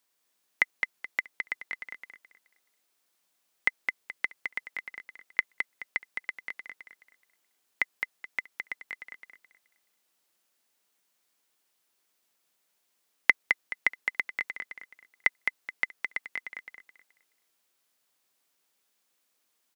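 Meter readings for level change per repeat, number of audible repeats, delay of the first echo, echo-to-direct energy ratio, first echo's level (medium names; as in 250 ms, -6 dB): -11.0 dB, 3, 213 ms, -4.5 dB, -5.0 dB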